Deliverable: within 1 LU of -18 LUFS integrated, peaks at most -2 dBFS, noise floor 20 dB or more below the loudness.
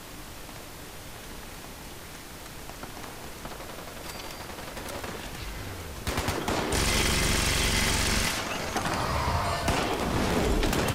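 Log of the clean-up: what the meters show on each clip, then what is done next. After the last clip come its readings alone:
noise floor -43 dBFS; noise floor target -48 dBFS; loudness -28.0 LUFS; peak level -12.0 dBFS; loudness target -18.0 LUFS
-> noise print and reduce 6 dB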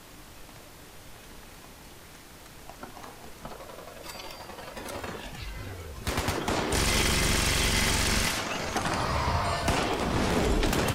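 noise floor -49 dBFS; loudness -27.5 LUFS; peak level -12.0 dBFS; loudness target -18.0 LUFS
-> trim +9.5 dB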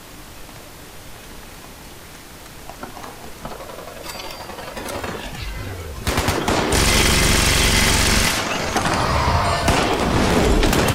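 loudness -18.0 LUFS; peak level -2.5 dBFS; noise floor -39 dBFS

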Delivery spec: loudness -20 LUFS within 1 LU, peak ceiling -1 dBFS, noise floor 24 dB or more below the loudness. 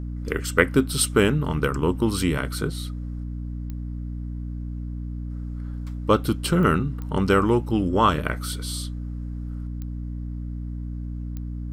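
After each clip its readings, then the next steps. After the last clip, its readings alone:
clicks found 5; hum 60 Hz; highest harmonic 300 Hz; hum level -28 dBFS; loudness -25.5 LUFS; peak level -1.5 dBFS; loudness target -20.0 LUFS
-> de-click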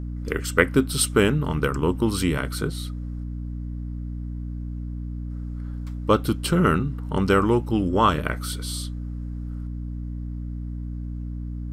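clicks found 0; hum 60 Hz; highest harmonic 300 Hz; hum level -28 dBFS
-> hum notches 60/120/180/240/300 Hz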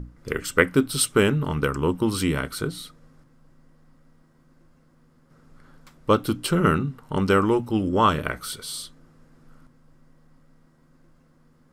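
hum not found; loudness -23.5 LUFS; peak level -1.5 dBFS; loudness target -20.0 LUFS
-> trim +3.5 dB; peak limiter -1 dBFS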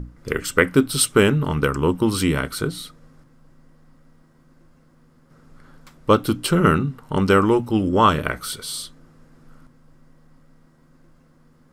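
loudness -20.0 LUFS; peak level -1.0 dBFS; noise floor -55 dBFS

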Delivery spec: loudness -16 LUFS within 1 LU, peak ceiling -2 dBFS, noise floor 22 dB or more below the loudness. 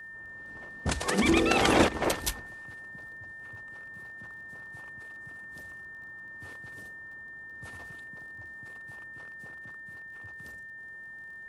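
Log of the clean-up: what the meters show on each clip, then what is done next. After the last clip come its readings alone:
tick rate 28 per s; steady tone 1.8 kHz; tone level -42 dBFS; loudness -33.0 LUFS; peak level -8.0 dBFS; loudness target -16.0 LUFS
-> de-click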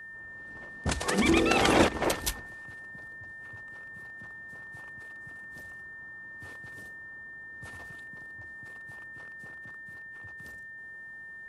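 tick rate 0 per s; steady tone 1.8 kHz; tone level -42 dBFS
-> band-stop 1.8 kHz, Q 30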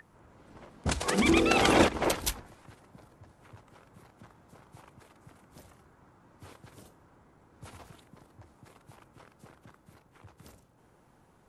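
steady tone not found; loudness -26.0 LUFS; peak level -8.5 dBFS; loudness target -16.0 LUFS
-> trim +10 dB; peak limiter -2 dBFS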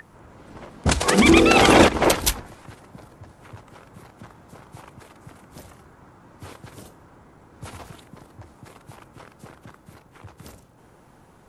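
loudness -16.5 LUFS; peak level -2.0 dBFS; noise floor -53 dBFS

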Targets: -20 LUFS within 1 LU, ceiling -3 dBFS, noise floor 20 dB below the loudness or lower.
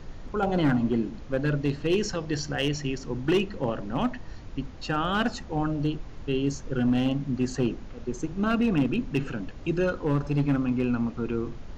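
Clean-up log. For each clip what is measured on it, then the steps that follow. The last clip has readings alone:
clipped samples 0.7%; clipping level -17.0 dBFS; noise floor -41 dBFS; noise floor target -48 dBFS; loudness -28.0 LUFS; peak level -17.0 dBFS; loudness target -20.0 LUFS
-> clip repair -17 dBFS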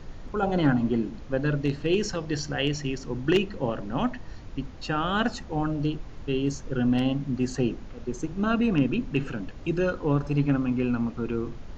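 clipped samples 0.0%; noise floor -41 dBFS; noise floor target -48 dBFS
-> noise print and reduce 7 dB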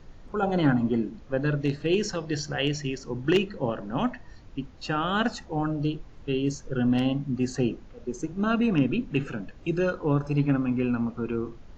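noise floor -48 dBFS; loudness -27.5 LUFS; peak level -9.0 dBFS; loudness target -20.0 LUFS
-> trim +7.5 dB; peak limiter -3 dBFS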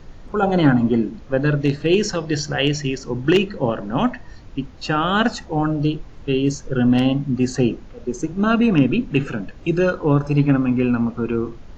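loudness -20.0 LUFS; peak level -3.0 dBFS; noise floor -40 dBFS

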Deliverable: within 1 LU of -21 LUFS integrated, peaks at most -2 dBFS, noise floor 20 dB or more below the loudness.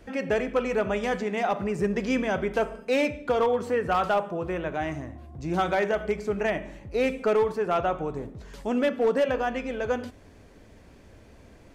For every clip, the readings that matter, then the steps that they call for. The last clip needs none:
clipped samples 0.6%; clipping level -17.0 dBFS; loudness -27.0 LUFS; peak level -17.0 dBFS; loudness target -21.0 LUFS
-> clip repair -17 dBFS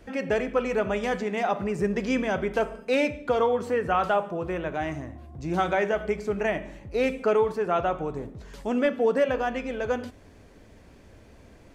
clipped samples 0.0%; loudness -26.5 LUFS; peak level -12.0 dBFS; loudness target -21.0 LUFS
-> trim +5.5 dB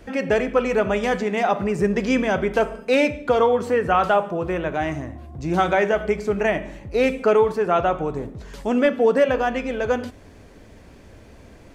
loudness -21.0 LUFS; peak level -6.5 dBFS; noise floor -46 dBFS

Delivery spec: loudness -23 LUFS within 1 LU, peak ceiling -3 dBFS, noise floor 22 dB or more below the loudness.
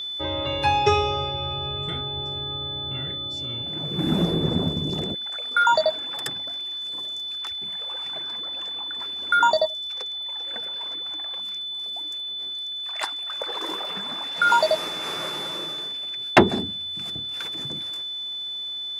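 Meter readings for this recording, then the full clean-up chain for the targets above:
tick rate 31 per s; steady tone 3.5 kHz; tone level -29 dBFS; loudness -25.0 LUFS; peak level -2.5 dBFS; loudness target -23.0 LUFS
-> de-click; band-stop 3.5 kHz, Q 30; trim +2 dB; peak limiter -3 dBFS

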